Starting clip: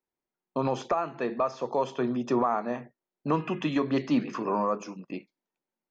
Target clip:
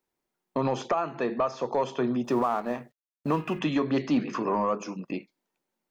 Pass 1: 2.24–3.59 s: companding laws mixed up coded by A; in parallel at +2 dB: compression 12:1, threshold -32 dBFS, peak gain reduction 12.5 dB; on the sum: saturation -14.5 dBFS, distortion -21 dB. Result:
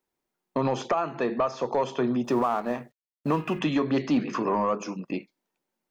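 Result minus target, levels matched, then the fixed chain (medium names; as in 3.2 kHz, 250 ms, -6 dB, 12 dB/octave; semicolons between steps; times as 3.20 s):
compression: peak gain reduction -6 dB
2.24–3.59 s: companding laws mixed up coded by A; in parallel at +2 dB: compression 12:1, threshold -38.5 dBFS, peak gain reduction 18.5 dB; on the sum: saturation -14.5 dBFS, distortion -23 dB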